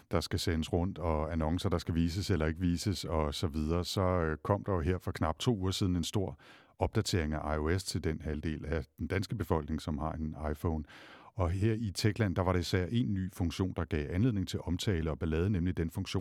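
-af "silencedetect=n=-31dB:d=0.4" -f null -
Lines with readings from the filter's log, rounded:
silence_start: 6.29
silence_end: 6.81 | silence_duration: 0.52
silence_start: 10.80
silence_end: 11.39 | silence_duration: 0.59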